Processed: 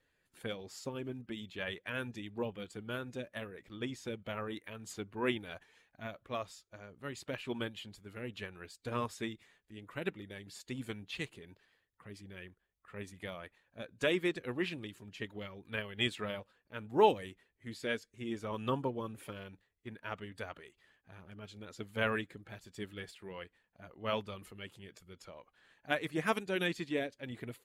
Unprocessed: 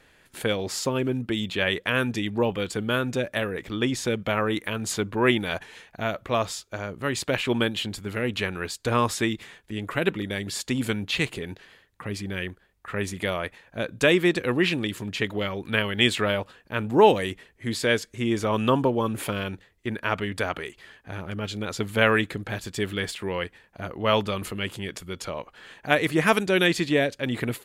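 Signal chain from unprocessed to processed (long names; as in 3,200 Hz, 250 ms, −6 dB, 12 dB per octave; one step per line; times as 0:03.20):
spectral magnitudes quantised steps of 15 dB
expander for the loud parts 1.5 to 1, over −33 dBFS
level −8.5 dB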